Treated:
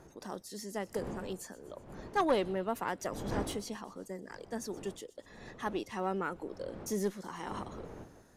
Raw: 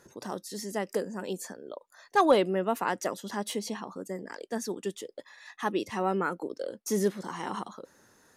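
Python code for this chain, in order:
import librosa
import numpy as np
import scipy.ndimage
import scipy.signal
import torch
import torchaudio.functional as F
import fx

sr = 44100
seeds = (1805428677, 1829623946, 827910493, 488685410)

y = fx.diode_clip(x, sr, knee_db=-19.0)
y = fx.dmg_wind(y, sr, seeds[0], corner_hz=470.0, level_db=-42.0)
y = fx.echo_wet_highpass(y, sr, ms=124, feedback_pct=61, hz=3800.0, wet_db=-17)
y = y * librosa.db_to_amplitude(-5.5)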